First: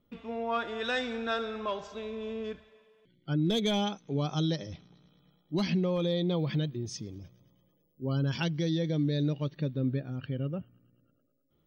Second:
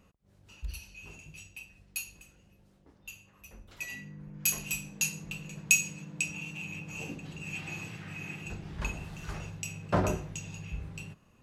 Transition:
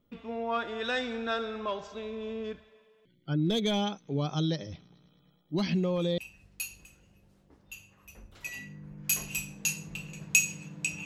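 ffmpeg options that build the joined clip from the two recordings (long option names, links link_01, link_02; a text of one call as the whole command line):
ffmpeg -i cue0.wav -i cue1.wav -filter_complex "[1:a]asplit=2[link_01][link_02];[0:a]apad=whole_dur=11.05,atrim=end=11.05,atrim=end=6.182[link_03];[link_02]atrim=start=1.538:end=6.41[link_04];[link_01]atrim=start=1.07:end=1.54,asetpts=PTS-STARTPTS,volume=-8.5dB,afade=type=in:duration=0.004:curve=hsin,afade=type=out:start_time=0.466:duration=0.004:curve=hsin,adelay=5710[link_05];[link_03][link_04]acrossfade=duration=0.004:curve1=hsin:curve2=hsin[link_06];[link_06][link_05]amix=inputs=2:normalize=0" out.wav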